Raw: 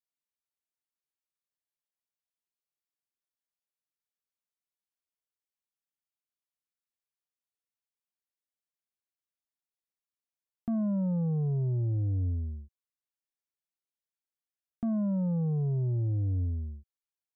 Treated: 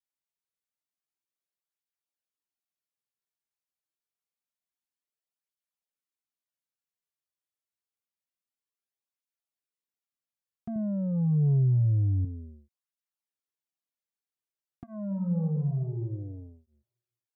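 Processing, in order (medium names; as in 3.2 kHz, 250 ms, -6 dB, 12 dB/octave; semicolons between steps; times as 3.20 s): 10.76–12.25 s: bass shelf 160 Hz +11 dB; 15.06–16.00 s: reverb throw, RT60 1.1 s, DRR 3 dB; cancelling through-zero flanger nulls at 0.27 Hz, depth 4.6 ms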